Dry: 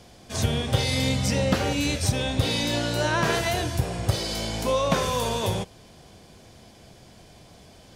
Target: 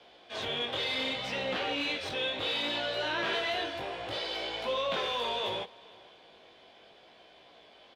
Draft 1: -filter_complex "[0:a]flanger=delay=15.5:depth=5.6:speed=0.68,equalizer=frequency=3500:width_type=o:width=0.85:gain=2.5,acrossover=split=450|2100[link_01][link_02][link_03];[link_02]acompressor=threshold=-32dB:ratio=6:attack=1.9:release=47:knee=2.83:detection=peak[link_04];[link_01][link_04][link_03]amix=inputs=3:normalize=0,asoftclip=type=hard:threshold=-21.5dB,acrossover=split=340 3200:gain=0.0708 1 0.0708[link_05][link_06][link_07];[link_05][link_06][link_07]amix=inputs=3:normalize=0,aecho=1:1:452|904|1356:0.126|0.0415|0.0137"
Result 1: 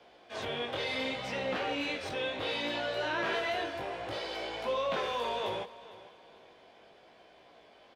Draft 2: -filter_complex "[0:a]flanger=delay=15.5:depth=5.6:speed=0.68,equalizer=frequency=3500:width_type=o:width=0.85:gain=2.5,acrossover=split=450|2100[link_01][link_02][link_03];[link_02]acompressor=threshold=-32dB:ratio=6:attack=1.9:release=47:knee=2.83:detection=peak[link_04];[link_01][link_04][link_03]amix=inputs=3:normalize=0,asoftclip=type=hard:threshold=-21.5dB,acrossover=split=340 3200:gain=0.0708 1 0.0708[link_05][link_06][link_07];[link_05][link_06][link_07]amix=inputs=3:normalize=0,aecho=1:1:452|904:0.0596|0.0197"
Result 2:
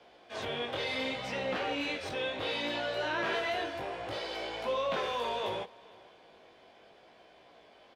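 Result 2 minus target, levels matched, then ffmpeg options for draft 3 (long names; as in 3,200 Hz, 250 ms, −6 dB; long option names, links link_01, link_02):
4,000 Hz band −4.0 dB
-filter_complex "[0:a]flanger=delay=15.5:depth=5.6:speed=0.68,equalizer=frequency=3500:width_type=o:width=0.85:gain=10,acrossover=split=450|2100[link_01][link_02][link_03];[link_02]acompressor=threshold=-32dB:ratio=6:attack=1.9:release=47:knee=2.83:detection=peak[link_04];[link_01][link_04][link_03]amix=inputs=3:normalize=0,asoftclip=type=hard:threshold=-21.5dB,acrossover=split=340 3200:gain=0.0708 1 0.0708[link_05][link_06][link_07];[link_05][link_06][link_07]amix=inputs=3:normalize=0,aecho=1:1:452|904:0.0596|0.0197"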